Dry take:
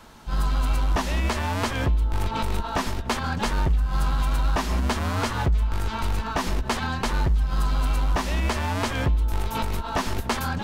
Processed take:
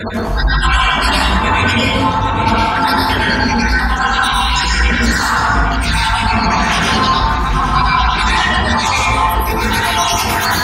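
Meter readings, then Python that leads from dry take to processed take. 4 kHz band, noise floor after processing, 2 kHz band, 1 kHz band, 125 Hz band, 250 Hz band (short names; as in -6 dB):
+17.0 dB, -16 dBFS, +18.0 dB, +16.0 dB, +7.0 dB, +12.0 dB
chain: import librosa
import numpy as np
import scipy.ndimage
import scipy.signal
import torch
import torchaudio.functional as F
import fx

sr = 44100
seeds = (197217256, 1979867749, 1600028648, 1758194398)

y = fx.spec_dropout(x, sr, seeds[0], share_pct=65)
y = fx.fuzz(y, sr, gain_db=50.0, gate_db=-56.0)
y = scipy.signal.sosfilt(scipy.signal.butter(2, 64.0, 'highpass', fs=sr, output='sos'), y)
y = fx.rider(y, sr, range_db=10, speed_s=2.0)
y = fx.chorus_voices(y, sr, voices=6, hz=1.1, base_ms=20, depth_ms=3.0, mix_pct=45)
y = fx.spec_gate(y, sr, threshold_db=-15, keep='strong')
y = fx.echo_feedback(y, sr, ms=810, feedback_pct=49, wet_db=-12)
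y = fx.rev_plate(y, sr, seeds[1], rt60_s=1.4, hf_ratio=0.45, predelay_ms=90, drr_db=-5.0)
y = y * librosa.db_to_amplitude(-1.0)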